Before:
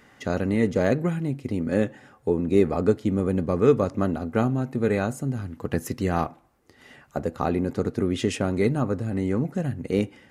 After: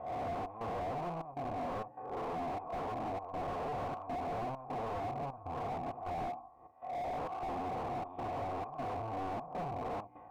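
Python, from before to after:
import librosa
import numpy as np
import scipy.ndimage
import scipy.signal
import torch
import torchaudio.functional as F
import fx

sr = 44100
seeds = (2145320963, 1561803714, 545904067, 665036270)

y = fx.spec_swells(x, sr, rise_s=0.66)
y = fx.low_shelf(y, sr, hz=160.0, db=6.0)
y = fx.hum_notches(y, sr, base_hz=60, count=5)
y = fx.notch_comb(y, sr, f0_hz=200.0)
y = np.clip(10.0 ** (32.5 / 20.0) * y, -1.0, 1.0) / 10.0 ** (32.5 / 20.0)
y = fx.step_gate(y, sr, bpm=99, pattern='xxx.xxxx.', floor_db=-12.0, edge_ms=4.5)
y = fx.formant_cascade(y, sr, vowel='a')
y = fx.slew_limit(y, sr, full_power_hz=1.6)
y = F.gain(torch.from_numpy(y), 16.5).numpy()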